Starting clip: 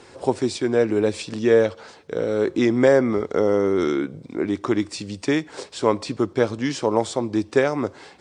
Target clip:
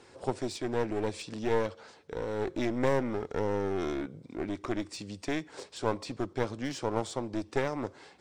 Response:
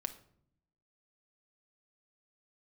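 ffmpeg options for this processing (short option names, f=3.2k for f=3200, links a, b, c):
-af "aeval=exprs='clip(val(0),-1,0.0501)':c=same,volume=-9dB"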